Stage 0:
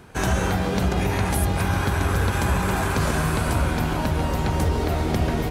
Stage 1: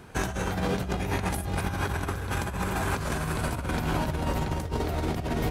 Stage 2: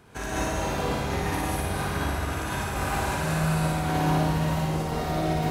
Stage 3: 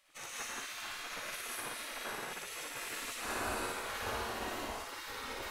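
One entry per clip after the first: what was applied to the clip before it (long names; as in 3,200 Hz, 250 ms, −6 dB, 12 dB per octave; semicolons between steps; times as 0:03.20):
compressor whose output falls as the input rises −24 dBFS, ratio −0.5; level −4 dB
low-shelf EQ 330 Hz −3.5 dB; on a send: flutter between parallel walls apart 9.7 metres, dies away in 1.1 s; on the sum: reverb whose tail is shaped and stops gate 230 ms rising, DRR −5.5 dB; level −6 dB
gate on every frequency bin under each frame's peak −15 dB weak; flanger 0.78 Hz, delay 2 ms, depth 1.2 ms, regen −74%; level −1 dB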